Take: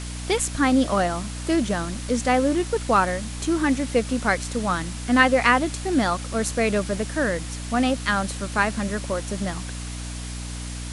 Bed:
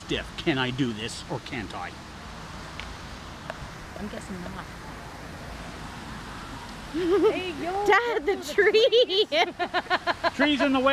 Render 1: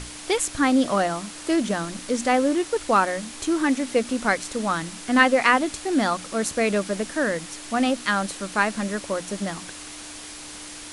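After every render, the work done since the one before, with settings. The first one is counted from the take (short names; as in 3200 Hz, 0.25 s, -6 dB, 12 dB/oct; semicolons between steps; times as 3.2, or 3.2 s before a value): notches 60/120/180/240 Hz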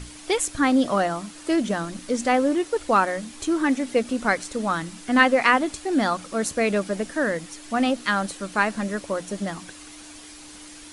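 denoiser 7 dB, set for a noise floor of -39 dBFS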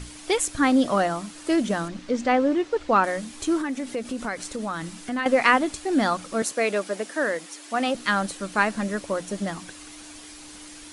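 1.88–3.04 air absorption 110 m; 3.61–5.26 compressor 3:1, threshold -27 dBFS; 6.42–7.95 HPF 330 Hz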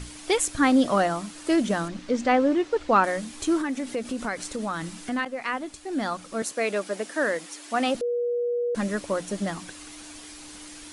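5.25–7.28 fade in, from -15.5 dB; 8.01–8.75 bleep 481 Hz -23 dBFS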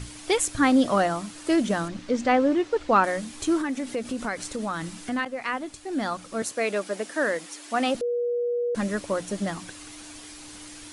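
bell 110 Hz +10 dB 0.2 oct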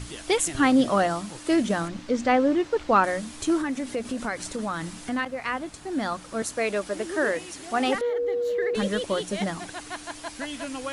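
add bed -12 dB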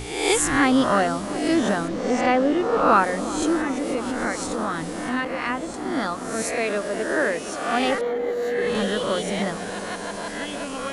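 spectral swells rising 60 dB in 0.81 s; dark delay 0.359 s, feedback 83%, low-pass 1000 Hz, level -12.5 dB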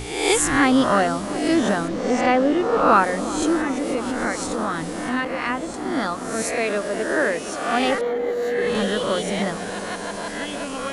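gain +1.5 dB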